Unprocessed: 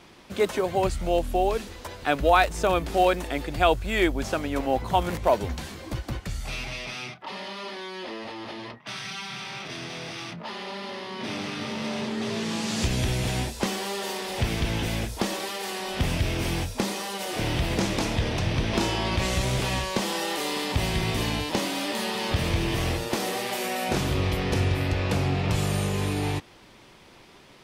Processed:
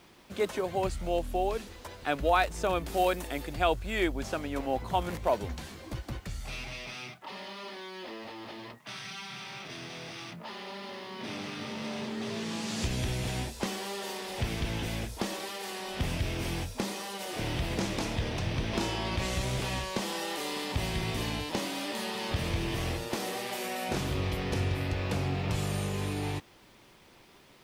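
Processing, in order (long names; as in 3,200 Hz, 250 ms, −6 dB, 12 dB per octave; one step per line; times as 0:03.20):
0:02.86–0:03.54: high-shelf EQ 9,100 Hz +11 dB
bit-depth reduction 10 bits, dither none
level −6 dB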